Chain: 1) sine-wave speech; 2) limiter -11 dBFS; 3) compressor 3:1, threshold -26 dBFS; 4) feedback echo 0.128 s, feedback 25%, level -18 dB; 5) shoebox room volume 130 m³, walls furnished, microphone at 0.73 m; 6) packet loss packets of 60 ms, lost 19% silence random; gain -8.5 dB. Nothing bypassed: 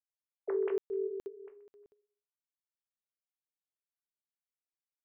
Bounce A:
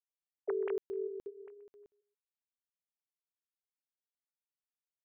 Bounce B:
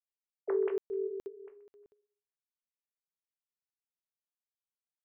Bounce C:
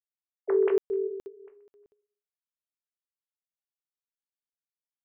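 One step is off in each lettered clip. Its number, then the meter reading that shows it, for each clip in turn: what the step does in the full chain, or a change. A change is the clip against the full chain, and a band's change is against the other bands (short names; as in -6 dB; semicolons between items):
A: 5, loudness change -3.0 LU; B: 2, momentary loudness spread change +1 LU; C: 3, momentary loudness spread change -1 LU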